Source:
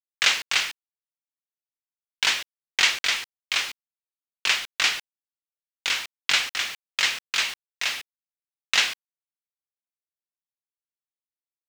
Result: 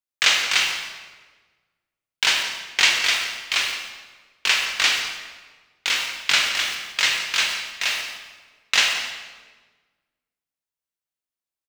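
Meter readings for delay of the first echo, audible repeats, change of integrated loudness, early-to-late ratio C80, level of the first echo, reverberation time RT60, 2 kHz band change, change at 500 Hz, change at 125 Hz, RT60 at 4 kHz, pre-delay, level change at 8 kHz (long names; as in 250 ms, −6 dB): 169 ms, 1, +3.5 dB, 6.0 dB, −13.0 dB, 1.4 s, +4.0 dB, +4.5 dB, can't be measured, 1.0 s, 17 ms, +4.0 dB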